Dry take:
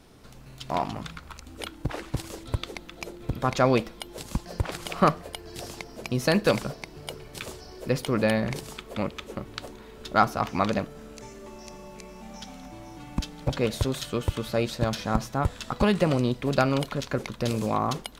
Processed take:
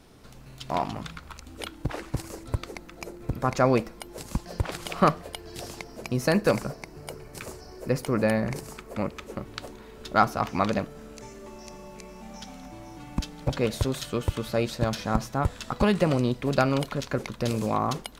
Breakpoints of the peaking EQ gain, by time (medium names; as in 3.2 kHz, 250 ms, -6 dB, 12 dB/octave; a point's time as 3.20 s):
peaking EQ 3.4 kHz 0.6 oct
1.87 s -0.5 dB
2.30 s -10 dB
4.01 s -10 dB
4.55 s -0.5 dB
5.60 s -0.5 dB
6.53 s -11.5 dB
8.96 s -11.5 dB
9.49 s -2 dB